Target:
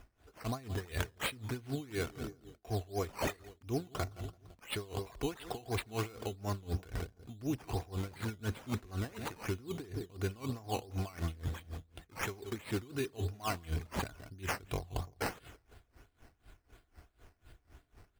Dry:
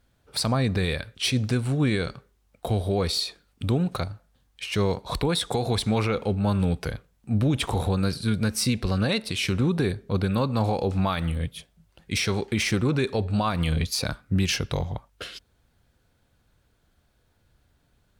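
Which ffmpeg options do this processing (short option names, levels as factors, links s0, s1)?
-filter_complex "[0:a]asplit=2[s0][s1];[s1]alimiter=limit=0.0668:level=0:latency=1,volume=0.891[s2];[s0][s2]amix=inputs=2:normalize=0,aecho=1:1:2.8:0.59,asplit=2[s3][s4];[s4]adelay=169,lowpass=f=1300:p=1,volume=0.178,asplit=2[s5][s6];[s6]adelay=169,lowpass=f=1300:p=1,volume=0.46,asplit=2[s7][s8];[s8]adelay=169,lowpass=f=1300:p=1,volume=0.46,asplit=2[s9][s10];[s10]adelay=169,lowpass=f=1300:p=1,volume=0.46[s11];[s3][s5][s7][s9][s11]amix=inputs=5:normalize=0,acrusher=samples=10:mix=1:aa=0.000001:lfo=1:lforange=6:lforate=2.9,areverse,acompressor=threshold=0.0251:ratio=12,areverse,aeval=exprs='val(0)*pow(10,-22*(0.5-0.5*cos(2*PI*4*n/s))/20)':c=same,volume=1.33"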